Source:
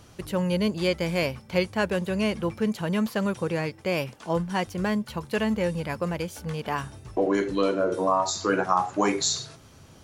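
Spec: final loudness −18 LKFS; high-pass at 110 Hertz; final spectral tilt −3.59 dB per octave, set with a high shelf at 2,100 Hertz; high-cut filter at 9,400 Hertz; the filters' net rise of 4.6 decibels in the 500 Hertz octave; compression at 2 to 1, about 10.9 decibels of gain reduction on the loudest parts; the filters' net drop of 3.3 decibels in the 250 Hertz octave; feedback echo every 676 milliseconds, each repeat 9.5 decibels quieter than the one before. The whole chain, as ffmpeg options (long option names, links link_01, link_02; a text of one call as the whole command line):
ffmpeg -i in.wav -af "highpass=110,lowpass=9400,equalizer=frequency=250:width_type=o:gain=-6.5,equalizer=frequency=500:width_type=o:gain=6.5,highshelf=frequency=2100:gain=6.5,acompressor=threshold=-36dB:ratio=2,aecho=1:1:676|1352|2028|2704:0.335|0.111|0.0365|0.012,volume=15dB" out.wav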